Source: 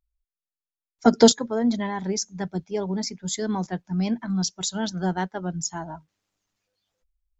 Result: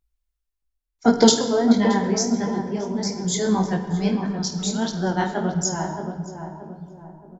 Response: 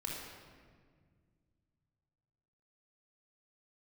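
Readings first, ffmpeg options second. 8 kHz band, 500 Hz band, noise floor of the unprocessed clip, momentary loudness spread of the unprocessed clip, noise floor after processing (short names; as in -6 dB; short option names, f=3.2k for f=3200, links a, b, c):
n/a, +2.5 dB, under -85 dBFS, 13 LU, -80 dBFS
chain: -filter_complex "[0:a]flanger=delay=18.5:depth=6.7:speed=1.6,tremolo=f=0.55:d=0.5,asplit=2[a][b];[b]adelay=624,lowpass=f=970:p=1,volume=-6dB,asplit=2[c][d];[d]adelay=624,lowpass=f=970:p=1,volume=0.45,asplit=2[e][f];[f]adelay=624,lowpass=f=970:p=1,volume=0.45,asplit=2[g][h];[h]adelay=624,lowpass=f=970:p=1,volume=0.45,asplit=2[i][j];[j]adelay=624,lowpass=f=970:p=1,volume=0.45[k];[a][c][e][g][i][k]amix=inputs=6:normalize=0,asplit=2[l][m];[1:a]atrim=start_sample=2205,adelay=50[n];[m][n]afir=irnorm=-1:irlink=0,volume=-8.5dB[o];[l][o]amix=inputs=2:normalize=0,volume=8dB"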